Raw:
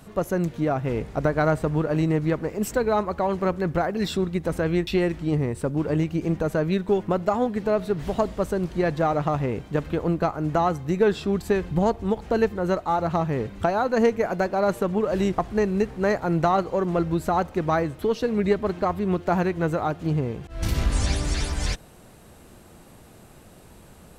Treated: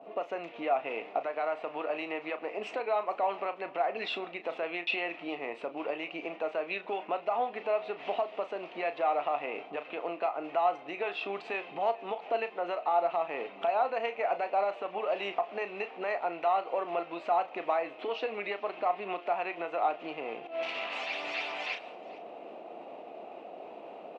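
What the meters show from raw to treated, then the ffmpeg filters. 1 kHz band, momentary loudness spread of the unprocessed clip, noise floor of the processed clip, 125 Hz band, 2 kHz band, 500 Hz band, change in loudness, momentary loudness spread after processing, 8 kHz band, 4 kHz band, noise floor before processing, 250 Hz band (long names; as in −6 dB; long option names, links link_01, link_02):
−3.5 dB, 4 LU, −48 dBFS, below −30 dB, −3.5 dB, −8.5 dB, −8.5 dB, 9 LU, below −25 dB, −4.0 dB, −49 dBFS, −19.5 dB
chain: -filter_complex "[0:a]acrossover=split=860[link_01][link_02];[link_01]acompressor=threshold=-29dB:ratio=6[link_03];[link_02]agate=range=-33dB:threshold=-48dB:ratio=3:detection=peak[link_04];[link_03][link_04]amix=inputs=2:normalize=0,alimiter=level_in=0.5dB:limit=-24dB:level=0:latency=1:release=363,volume=-0.5dB,highpass=frequency=340:width=0.5412,highpass=frequency=340:width=1.3066,equalizer=frequency=370:width_type=q:width=4:gain=-4,equalizer=frequency=700:width_type=q:width=4:gain=10,equalizer=frequency=1600:width_type=q:width=4:gain=-9,equalizer=frequency=2600:width_type=q:width=4:gain=9,lowpass=frequency=2900:width=0.5412,lowpass=frequency=2900:width=1.3066,asplit=2[link_05][link_06];[link_06]adelay=35,volume=-11dB[link_07];[link_05][link_07]amix=inputs=2:normalize=0,areverse,acompressor=mode=upward:threshold=-40dB:ratio=2.5,areverse,aemphasis=mode=production:type=50kf,aecho=1:1:434:0.0794,volume=2.5dB"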